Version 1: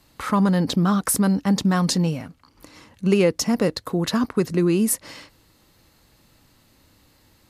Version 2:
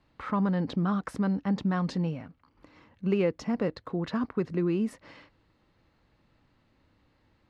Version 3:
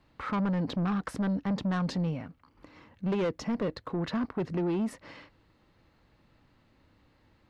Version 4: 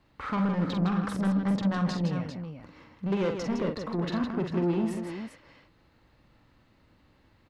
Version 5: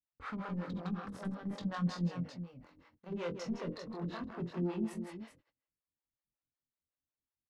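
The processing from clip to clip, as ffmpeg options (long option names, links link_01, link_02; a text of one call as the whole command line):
ffmpeg -i in.wav -af "lowpass=2600,volume=-8dB" out.wav
ffmpeg -i in.wav -af "asoftclip=type=tanh:threshold=-27.5dB,volume=2.5dB" out.wav
ffmpeg -i in.wav -af "aecho=1:1:46|160|397:0.501|0.447|0.376" out.wav
ffmpeg -i in.wav -filter_complex "[0:a]asplit=2[link_01][link_02];[link_02]adelay=23,volume=-5dB[link_03];[link_01][link_03]amix=inputs=2:normalize=0,acrossover=split=410[link_04][link_05];[link_04]aeval=exprs='val(0)*(1-1/2+1/2*cos(2*PI*5.4*n/s))':channel_layout=same[link_06];[link_05]aeval=exprs='val(0)*(1-1/2-1/2*cos(2*PI*5.4*n/s))':channel_layout=same[link_07];[link_06][link_07]amix=inputs=2:normalize=0,agate=range=-30dB:threshold=-55dB:ratio=16:detection=peak,volume=-6.5dB" out.wav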